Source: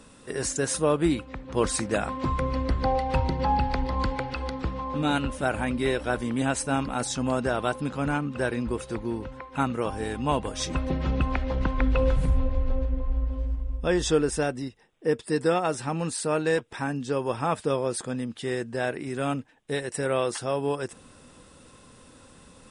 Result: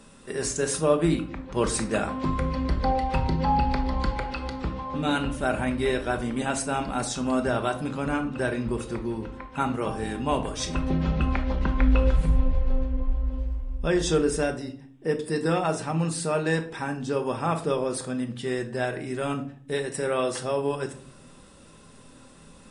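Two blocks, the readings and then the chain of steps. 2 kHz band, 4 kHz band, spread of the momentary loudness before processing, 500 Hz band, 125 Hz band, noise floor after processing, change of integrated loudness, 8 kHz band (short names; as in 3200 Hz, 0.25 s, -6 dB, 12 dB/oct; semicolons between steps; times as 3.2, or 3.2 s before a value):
0.0 dB, 0.0 dB, 7 LU, 0.0 dB, +1.0 dB, -50 dBFS, +0.5 dB, 0.0 dB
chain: shoebox room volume 580 m³, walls furnished, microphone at 1.2 m; gain -1 dB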